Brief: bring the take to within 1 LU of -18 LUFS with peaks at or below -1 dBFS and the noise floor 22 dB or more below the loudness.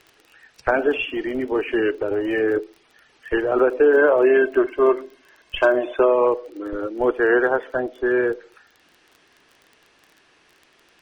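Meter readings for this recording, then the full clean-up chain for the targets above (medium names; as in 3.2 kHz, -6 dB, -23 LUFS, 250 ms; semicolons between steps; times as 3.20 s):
tick rate 22 per s; loudness -20.0 LUFS; peak level -6.0 dBFS; loudness target -18.0 LUFS
-> de-click; trim +2 dB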